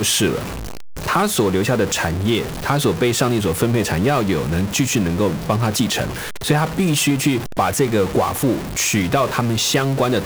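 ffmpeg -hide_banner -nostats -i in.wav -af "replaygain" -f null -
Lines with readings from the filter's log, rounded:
track_gain = +0.3 dB
track_peak = 0.509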